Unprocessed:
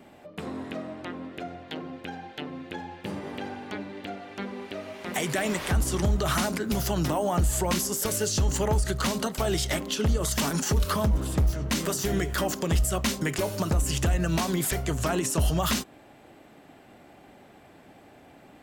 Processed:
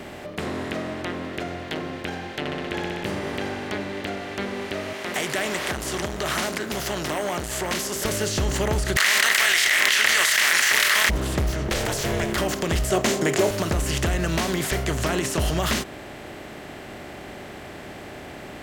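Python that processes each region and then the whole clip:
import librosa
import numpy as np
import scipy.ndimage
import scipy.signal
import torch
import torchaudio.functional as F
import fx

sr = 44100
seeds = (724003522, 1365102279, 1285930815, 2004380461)

y = fx.chain(x, sr, fx.high_shelf(hz=10000.0, db=-7.5),
    fx.room_flutter(wall_m=10.8, rt60_s=1.5), at=(2.39, 3.04))
y = fx.chain(y, sr, fx.highpass(hz=480.0, slope=6),
    fx.transformer_sat(knee_hz=1000.0), at=(4.93, 7.96))
y = fx.spec_flatten(y, sr, power=0.67, at=(8.95, 11.09), fade=0.02)
y = fx.highpass_res(y, sr, hz=1900.0, q=5.1, at=(8.95, 11.09), fade=0.02)
y = fx.env_flatten(y, sr, amount_pct=100, at=(8.95, 11.09), fade=0.02)
y = fx.chain(y, sr, fx.ring_mod(carrier_hz=280.0),
    fx.env_flatten(amount_pct=50), at=(11.68, 12.37))
y = fx.chain(y, sr, fx.highpass(hz=110.0, slope=24),
    fx.peak_eq(hz=7000.0, db=10.0, octaves=0.38),
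    fx.small_body(hz=(400.0, 660.0), ring_ms=20, db=12), at=(12.9, 13.51))
y = fx.bin_compress(y, sr, power=0.6)
y = fx.high_shelf(y, sr, hz=6400.0, db=-6.0)
y = y * 10.0 ** (-2.5 / 20.0)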